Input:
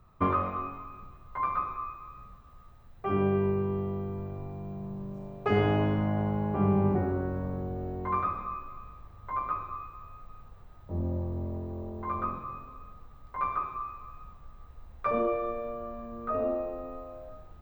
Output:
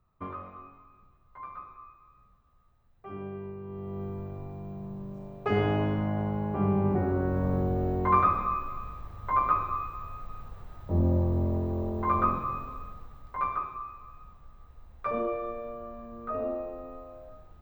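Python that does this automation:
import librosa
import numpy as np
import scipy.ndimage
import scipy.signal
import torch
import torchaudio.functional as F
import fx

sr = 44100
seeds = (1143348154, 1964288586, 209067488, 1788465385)

y = fx.gain(x, sr, db=fx.line((3.6, -12.5), (4.03, -1.0), (6.84, -1.0), (7.55, 7.0), (12.72, 7.0), (13.81, -2.5)))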